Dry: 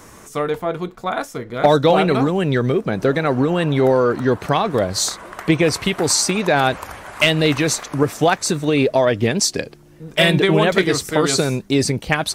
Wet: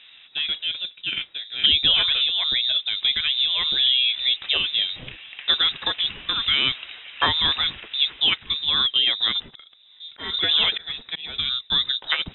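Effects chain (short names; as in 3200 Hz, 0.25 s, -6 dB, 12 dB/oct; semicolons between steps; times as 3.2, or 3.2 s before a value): low-pass opened by the level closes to 2600 Hz, open at -11 dBFS; 9.47–11.53 auto swell 0.344 s; inverted band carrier 3800 Hz; gain -5 dB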